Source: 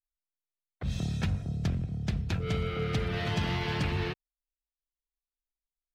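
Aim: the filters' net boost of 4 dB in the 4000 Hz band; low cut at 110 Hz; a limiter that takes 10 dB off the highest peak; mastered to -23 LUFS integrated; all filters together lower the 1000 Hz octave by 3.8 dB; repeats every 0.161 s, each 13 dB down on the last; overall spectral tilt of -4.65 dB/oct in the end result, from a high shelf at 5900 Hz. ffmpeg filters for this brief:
-af "highpass=110,equalizer=f=1k:t=o:g=-5.5,equalizer=f=4k:t=o:g=8.5,highshelf=f=5.9k:g=-8.5,alimiter=level_in=3.5dB:limit=-24dB:level=0:latency=1,volume=-3.5dB,aecho=1:1:161|322|483:0.224|0.0493|0.0108,volume=13.5dB"

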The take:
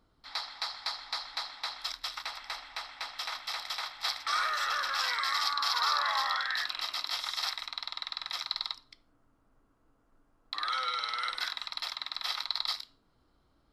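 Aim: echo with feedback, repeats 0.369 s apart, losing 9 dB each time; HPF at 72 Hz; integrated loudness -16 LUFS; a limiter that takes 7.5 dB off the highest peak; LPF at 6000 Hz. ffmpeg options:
-af "highpass=72,lowpass=6k,alimiter=limit=-22dB:level=0:latency=1,aecho=1:1:369|738|1107|1476:0.355|0.124|0.0435|0.0152,volume=18dB"

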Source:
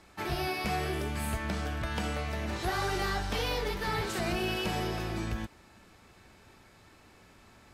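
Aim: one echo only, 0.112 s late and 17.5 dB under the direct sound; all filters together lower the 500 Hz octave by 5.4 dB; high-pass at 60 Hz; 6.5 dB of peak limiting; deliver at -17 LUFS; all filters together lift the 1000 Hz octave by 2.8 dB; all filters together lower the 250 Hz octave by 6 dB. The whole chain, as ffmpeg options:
-af "highpass=60,equalizer=f=250:t=o:g=-7,equalizer=f=500:t=o:g=-7,equalizer=f=1k:t=o:g=7,alimiter=level_in=2dB:limit=-24dB:level=0:latency=1,volume=-2dB,aecho=1:1:112:0.133,volume=18dB"

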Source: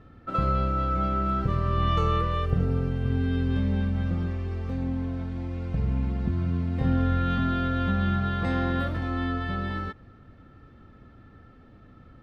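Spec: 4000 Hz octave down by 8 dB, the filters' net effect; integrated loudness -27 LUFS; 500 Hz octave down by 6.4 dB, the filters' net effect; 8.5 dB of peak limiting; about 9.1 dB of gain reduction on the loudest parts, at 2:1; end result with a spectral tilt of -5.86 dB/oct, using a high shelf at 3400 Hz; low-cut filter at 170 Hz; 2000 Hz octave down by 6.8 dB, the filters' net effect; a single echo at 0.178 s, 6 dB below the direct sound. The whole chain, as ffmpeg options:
-af "highpass=170,equalizer=f=500:t=o:g=-7.5,equalizer=f=2k:t=o:g=-6.5,highshelf=f=3.4k:g=-3.5,equalizer=f=4k:t=o:g=-5.5,acompressor=threshold=-43dB:ratio=2,alimiter=level_in=11.5dB:limit=-24dB:level=0:latency=1,volume=-11.5dB,aecho=1:1:178:0.501,volume=16dB"

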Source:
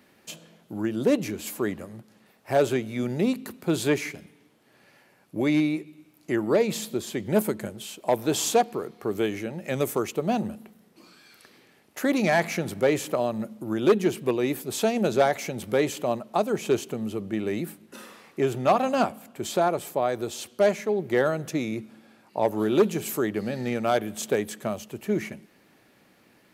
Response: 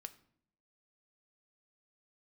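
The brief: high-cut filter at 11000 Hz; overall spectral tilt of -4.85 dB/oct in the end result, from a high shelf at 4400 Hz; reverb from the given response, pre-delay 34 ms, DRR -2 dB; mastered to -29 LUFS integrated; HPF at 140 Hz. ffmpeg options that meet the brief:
-filter_complex "[0:a]highpass=140,lowpass=11k,highshelf=f=4.4k:g=-6.5,asplit=2[a][b];[1:a]atrim=start_sample=2205,adelay=34[c];[b][c]afir=irnorm=-1:irlink=0,volume=7.5dB[d];[a][d]amix=inputs=2:normalize=0,volume=-6dB"

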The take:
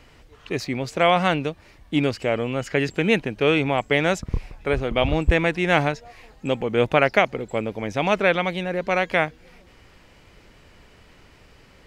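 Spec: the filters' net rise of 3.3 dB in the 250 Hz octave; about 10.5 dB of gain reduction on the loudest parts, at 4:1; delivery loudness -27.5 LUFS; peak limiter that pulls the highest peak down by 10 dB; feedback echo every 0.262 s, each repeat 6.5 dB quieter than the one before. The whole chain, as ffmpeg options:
-af "equalizer=f=250:t=o:g=4.5,acompressor=threshold=-25dB:ratio=4,alimiter=limit=-22dB:level=0:latency=1,aecho=1:1:262|524|786|1048|1310|1572:0.473|0.222|0.105|0.0491|0.0231|0.0109,volume=4.5dB"

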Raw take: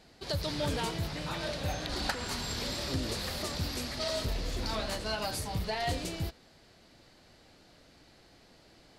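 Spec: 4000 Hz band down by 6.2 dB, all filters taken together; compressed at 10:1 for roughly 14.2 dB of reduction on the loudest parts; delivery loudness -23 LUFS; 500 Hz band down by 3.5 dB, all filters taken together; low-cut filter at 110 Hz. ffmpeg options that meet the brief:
-af "highpass=110,equalizer=f=500:t=o:g=-4.5,equalizer=f=4k:t=o:g=-7.5,acompressor=threshold=-46dB:ratio=10,volume=26dB"

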